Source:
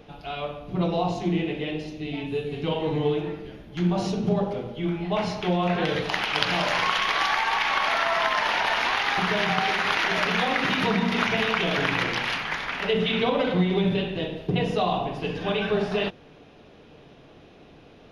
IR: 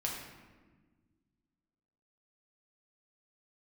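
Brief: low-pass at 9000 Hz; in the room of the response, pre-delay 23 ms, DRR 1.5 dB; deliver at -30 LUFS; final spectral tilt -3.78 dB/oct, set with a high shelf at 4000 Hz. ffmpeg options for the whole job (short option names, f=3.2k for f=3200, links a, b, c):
-filter_complex "[0:a]lowpass=9k,highshelf=f=4k:g=-5,asplit=2[a][b];[1:a]atrim=start_sample=2205,adelay=23[c];[b][c]afir=irnorm=-1:irlink=0,volume=-4.5dB[d];[a][d]amix=inputs=2:normalize=0,volume=-7.5dB"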